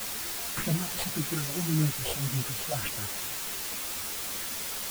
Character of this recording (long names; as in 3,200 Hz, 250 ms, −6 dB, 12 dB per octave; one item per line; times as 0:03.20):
aliases and images of a low sample rate 6,000 Hz
phaser sweep stages 4, 1.8 Hz, lowest notch 220–1,100 Hz
a quantiser's noise floor 6 bits, dither triangular
a shimmering, thickened sound